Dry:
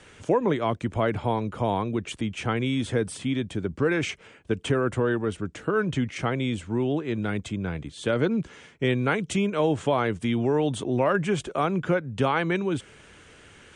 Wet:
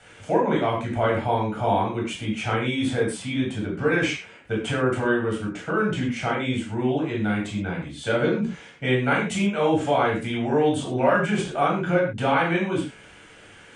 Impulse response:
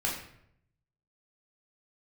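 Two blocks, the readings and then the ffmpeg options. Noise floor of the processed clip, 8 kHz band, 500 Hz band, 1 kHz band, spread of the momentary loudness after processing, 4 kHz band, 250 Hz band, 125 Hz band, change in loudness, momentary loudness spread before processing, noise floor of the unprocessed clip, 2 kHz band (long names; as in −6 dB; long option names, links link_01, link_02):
−48 dBFS, +1.5 dB, +2.0 dB, +4.5 dB, 7 LU, +3.0 dB, +2.0 dB, +0.5 dB, +2.5 dB, 7 LU, −52 dBFS, +4.5 dB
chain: -filter_complex "[0:a]lowshelf=frequency=160:gain=-9.5[link_01];[1:a]atrim=start_sample=2205,afade=type=out:start_time=0.19:duration=0.01,atrim=end_sample=8820[link_02];[link_01][link_02]afir=irnorm=-1:irlink=0,volume=-2.5dB"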